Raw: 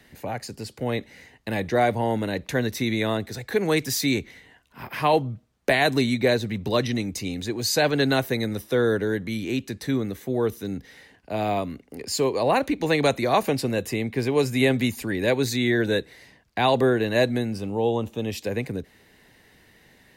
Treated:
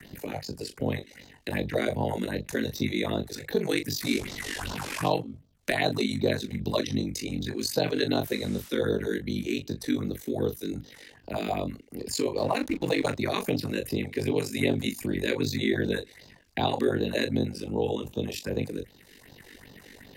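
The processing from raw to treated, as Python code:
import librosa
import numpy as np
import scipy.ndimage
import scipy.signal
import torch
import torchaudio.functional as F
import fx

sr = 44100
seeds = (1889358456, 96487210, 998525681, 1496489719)

y = fx.delta_mod(x, sr, bps=64000, step_db=-26.5, at=(4.01, 5.09))
y = fx.phaser_stages(y, sr, stages=4, low_hz=110.0, high_hz=2200.0, hz=2.6, feedback_pct=25)
y = fx.doubler(y, sr, ms=33.0, db=-9)
y = y * np.sin(2.0 * np.pi * 24.0 * np.arange(len(y)) / sr)
y = fx.dmg_noise_band(y, sr, seeds[0], low_hz=880.0, high_hz=9600.0, level_db=-53.0, at=(8.23, 8.68), fade=0.02)
y = fx.backlash(y, sr, play_db=-40.0, at=(12.37, 13.18))
y = fx.band_squash(y, sr, depth_pct=40)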